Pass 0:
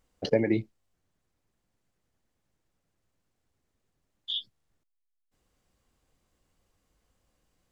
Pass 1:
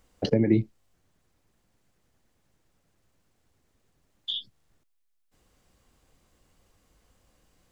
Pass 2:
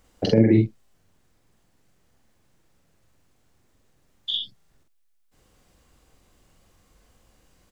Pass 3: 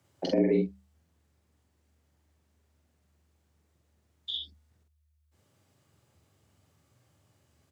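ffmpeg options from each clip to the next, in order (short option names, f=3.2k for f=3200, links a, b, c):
-filter_complex "[0:a]acrossover=split=320[a][b];[b]acompressor=threshold=-37dB:ratio=8[c];[a][c]amix=inputs=2:normalize=0,volume=8dB"
-filter_complex "[0:a]asplit=2[a][b];[b]adelay=45,volume=-2.5dB[c];[a][c]amix=inputs=2:normalize=0,volume=3dB"
-af "bandreject=f=60:t=h:w=6,bandreject=f=120:t=h:w=6,afreqshift=75,volume=-8dB"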